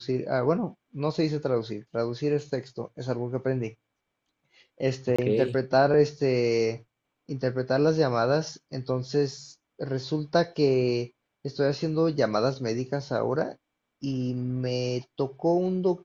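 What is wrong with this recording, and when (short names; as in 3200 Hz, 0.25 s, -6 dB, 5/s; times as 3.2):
5.16–5.18 gap 25 ms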